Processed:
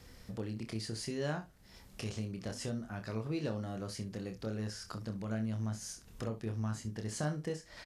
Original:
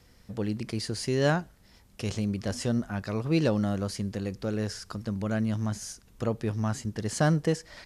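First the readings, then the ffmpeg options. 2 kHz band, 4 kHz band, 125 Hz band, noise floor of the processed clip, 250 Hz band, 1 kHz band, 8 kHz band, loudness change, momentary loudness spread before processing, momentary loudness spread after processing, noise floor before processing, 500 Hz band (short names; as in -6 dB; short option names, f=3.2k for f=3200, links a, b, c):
-10.5 dB, -8.0 dB, -9.0 dB, -58 dBFS, -10.0 dB, -10.5 dB, -7.0 dB, -9.5 dB, 9 LU, 6 LU, -59 dBFS, -10.5 dB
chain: -filter_complex "[0:a]acompressor=threshold=-49dB:ratio=2,asplit=2[a][b];[b]aecho=0:1:27|65:0.501|0.2[c];[a][c]amix=inputs=2:normalize=0,volume=2dB"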